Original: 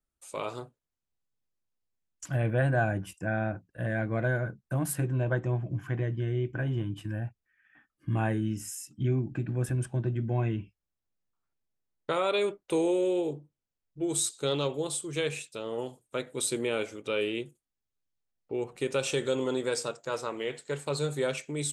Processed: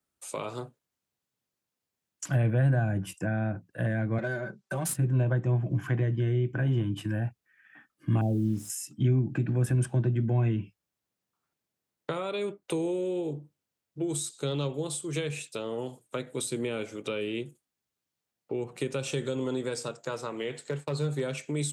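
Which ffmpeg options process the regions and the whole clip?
ffmpeg -i in.wav -filter_complex "[0:a]asettb=1/sr,asplit=3[link_01][link_02][link_03];[link_01]atrim=end=4.184[link_04];[link_02]atrim=start=4.18:end=4.97,asetpts=PTS-STARTPTS,afade=type=in:duration=0.004:curve=qsin,afade=type=out:start_time=0.786:duration=0.004:curve=qsin,bass=frequency=250:gain=-11,treble=frequency=4000:gain=13,aecho=1:1:5.2:0.83,atrim=end_sample=34839,adynamicsmooth=sensitivity=6.5:basefreq=4500[link_05];[link_03]atrim=start=4.966[link_06];[link_04][link_05]acrossfade=duration=0.004:curve1=hsin:curve2=qsin[link_07];[link_07][link_06]acrossfade=duration=0.004:curve1=qsin:curve2=hsin,asettb=1/sr,asplit=3[link_08][link_09][link_10];[link_08]atrim=end=8.214[link_11];[link_09]atrim=start=8.21:end=8.7,asetpts=PTS-STARTPTS,afade=type=in:duration=0.004:curve=qsin,afade=type=out:start_time=0.486:duration=0.004:curve=qsin,asuperstop=centerf=1500:order=12:qfactor=0.69,highshelf=frequency=2100:width_type=q:width=3:gain=-9,acrusher=bits=8:mix=0:aa=0.5[link_12];[link_10]atrim=start=8.696[link_13];[link_11][link_12]acrossfade=duration=0.004:curve1=hsin:curve2=qsin[link_14];[link_14][link_13]acrossfade=duration=0.004:curve1=qsin:curve2=hsin,asettb=1/sr,asplit=3[link_15][link_16][link_17];[link_15]atrim=end=20.694[link_18];[link_16]atrim=start=20.69:end=21.21,asetpts=PTS-STARTPTS,afade=type=in:duration=0.004:curve=qsin,afade=type=out:start_time=0.516:duration=0.004:curve=qsin,agate=range=-33dB:threshold=-39dB:ratio=3:release=100:detection=peak,highshelf=frequency=5700:gain=-8.5,volume=24dB,asoftclip=hard,volume=-24dB[link_19];[link_17]atrim=start=21.206[link_20];[link_18][link_19]acrossfade=duration=0.004:curve1=hsin:curve2=qsin[link_21];[link_21][link_20]acrossfade=duration=0.004:curve1=qsin:curve2=hsin,highpass=110,acrossover=split=220[link_22][link_23];[link_23]acompressor=threshold=-39dB:ratio=5[link_24];[link_22][link_24]amix=inputs=2:normalize=0,volume=6.5dB" out.wav

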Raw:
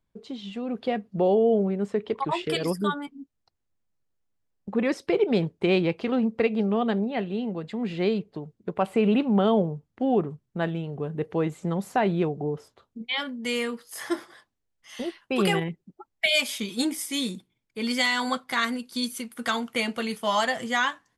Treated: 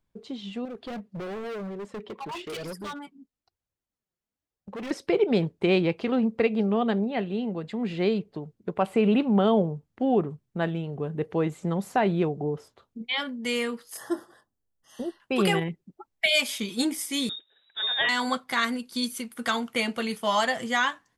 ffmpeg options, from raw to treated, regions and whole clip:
ffmpeg -i in.wav -filter_complex "[0:a]asettb=1/sr,asplit=3[link_01][link_02][link_03];[link_01]atrim=end=0.654[link_04];[link_02]atrim=start=0.65:end=4.91,asetpts=PTS-STARTPTS,afade=type=in:duration=0.004:curve=qsin,afade=type=out:start_time=4.256:duration=0.004:curve=qsin,highpass=frequency=41:poles=1,flanger=delay=1.2:depth=4.6:regen=25:speed=1:shape=triangular,asoftclip=type=hard:threshold=-33dB[link_05];[link_03]atrim=start=4.906[link_06];[link_04][link_05]acrossfade=duration=0.004:curve1=hsin:curve2=qsin[link_07];[link_07][link_06]acrossfade=duration=0.004:curve1=qsin:curve2=hsin,asettb=1/sr,asplit=3[link_08][link_09][link_10];[link_08]atrim=end=13.974[link_11];[link_09]atrim=start=13.97:end=15.2,asetpts=PTS-STARTPTS,afade=type=in:duration=0.004:curve=qsin,afade=type=out:start_time=1.226:duration=0.004:curve=qsin,asuperstop=centerf=2300:order=8:qfactor=2.9,equalizer=frequency=3200:width_type=o:width=2.5:gain=-11[link_12];[link_10]atrim=start=15.196[link_13];[link_11][link_12]acrossfade=duration=0.004:curve1=hsin:curve2=qsin[link_14];[link_14][link_13]acrossfade=duration=0.004:curve1=qsin:curve2=hsin,asettb=1/sr,asplit=3[link_15][link_16][link_17];[link_15]atrim=end=17.294[link_18];[link_16]atrim=start=17.29:end=18.09,asetpts=PTS-STARTPTS,afade=type=in:duration=0.004:curve=qsin,afade=type=out:start_time=0.796:duration=0.004:curve=qsin,lowpass=frequency=3300:width_type=q:width=0.5098,lowpass=frequency=3300:width_type=q:width=0.6013,lowpass=frequency=3300:width_type=q:width=0.9,lowpass=frequency=3300:width_type=q:width=2.563,afreqshift=-3900,bandreject=frequency=730:width=18,acompressor=mode=upward:threshold=-48dB:ratio=2.5:attack=3.2:release=140:knee=2.83:detection=peak[link_19];[link_17]atrim=start=18.086[link_20];[link_18][link_19]acrossfade=duration=0.004:curve1=hsin:curve2=qsin[link_21];[link_21][link_20]acrossfade=duration=0.004:curve1=qsin:curve2=hsin" out.wav

